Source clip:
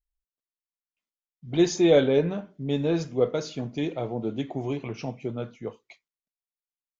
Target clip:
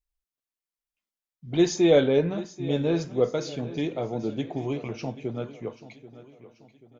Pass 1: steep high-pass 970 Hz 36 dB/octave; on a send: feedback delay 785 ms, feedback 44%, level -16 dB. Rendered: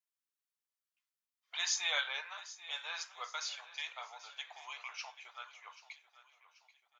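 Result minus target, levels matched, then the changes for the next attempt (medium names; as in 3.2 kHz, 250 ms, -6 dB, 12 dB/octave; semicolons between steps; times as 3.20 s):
1 kHz band +5.5 dB
remove: steep high-pass 970 Hz 36 dB/octave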